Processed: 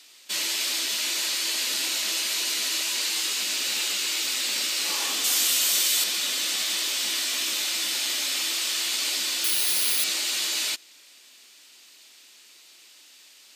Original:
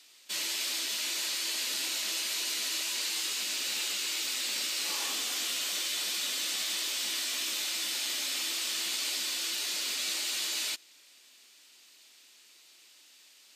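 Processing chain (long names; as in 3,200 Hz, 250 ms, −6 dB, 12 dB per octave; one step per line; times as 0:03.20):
0:05.24–0:06.04: high-shelf EQ 7,200 Hz +11.5 dB
0:08.08–0:08.93: high-pass filter 120 Hz → 350 Hz 6 dB per octave
0:09.44–0:10.04: bad sample-rate conversion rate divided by 3×, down filtered, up zero stuff
level +6 dB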